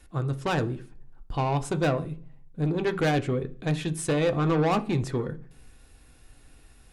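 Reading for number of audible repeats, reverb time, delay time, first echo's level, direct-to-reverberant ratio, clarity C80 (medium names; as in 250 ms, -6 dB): no echo, 0.45 s, no echo, no echo, 7.0 dB, 23.0 dB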